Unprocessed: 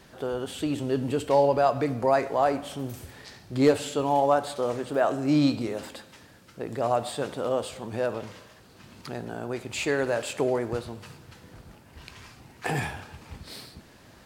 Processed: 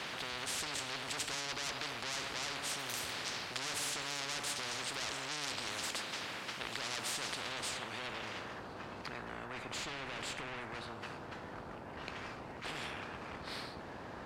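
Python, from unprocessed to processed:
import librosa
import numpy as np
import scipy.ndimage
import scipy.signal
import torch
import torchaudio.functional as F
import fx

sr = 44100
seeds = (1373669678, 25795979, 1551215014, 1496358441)

y = fx.tube_stage(x, sr, drive_db=30.0, bias=0.45)
y = fx.filter_sweep_bandpass(y, sr, from_hz=1600.0, to_hz=260.0, start_s=7.21, end_s=8.93, q=1.3)
y = fx.spectral_comp(y, sr, ratio=10.0)
y = F.gain(torch.from_numpy(y), 7.5).numpy()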